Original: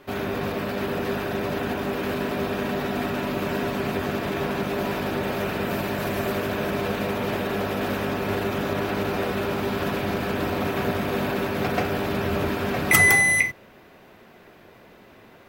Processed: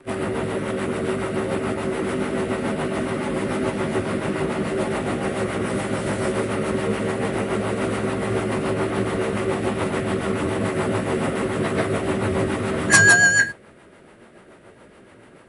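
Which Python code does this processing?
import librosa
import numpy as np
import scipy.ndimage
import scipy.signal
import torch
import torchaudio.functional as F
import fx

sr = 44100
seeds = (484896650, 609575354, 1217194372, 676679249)

y = fx.partial_stretch(x, sr, pct=90)
y = fx.rotary(y, sr, hz=7.0)
y = fx.quant_float(y, sr, bits=8)
y = y * librosa.db_to_amplitude(7.0)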